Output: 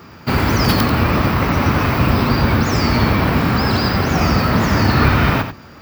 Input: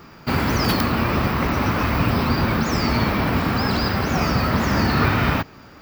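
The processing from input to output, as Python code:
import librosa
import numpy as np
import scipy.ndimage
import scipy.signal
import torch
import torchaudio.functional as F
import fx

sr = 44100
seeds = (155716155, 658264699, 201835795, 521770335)

y = fx.octave_divider(x, sr, octaves=1, level_db=-2.0)
y = scipy.signal.sosfilt(scipy.signal.butter(2, 53.0, 'highpass', fs=sr, output='sos'), y)
y = y + 10.0 ** (-9.0 / 20.0) * np.pad(y, (int(90 * sr / 1000.0), 0))[:len(y)]
y = y * 10.0 ** (3.5 / 20.0)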